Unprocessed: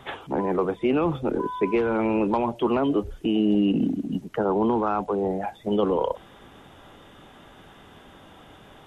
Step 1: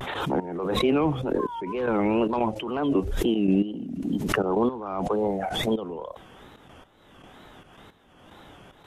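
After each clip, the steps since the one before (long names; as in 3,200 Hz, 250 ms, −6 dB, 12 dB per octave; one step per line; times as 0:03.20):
gate pattern "x.x...xx" 112 BPM −12 dB
tape wow and flutter 140 cents
background raised ahead of every attack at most 38 dB per second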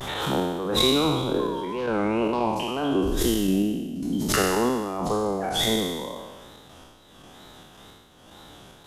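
peak hold with a decay on every bin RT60 1.35 s
high shelf with overshoot 3,400 Hz +8 dB, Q 1.5
level −2 dB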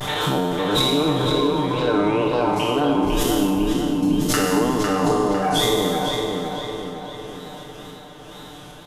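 comb filter 6.7 ms, depth 82%
downward compressor, threshold −21 dBFS, peak gain reduction 7.5 dB
on a send: feedback echo with a low-pass in the loop 503 ms, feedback 54%, low-pass 4,300 Hz, level −4 dB
on the sum: level +4 dB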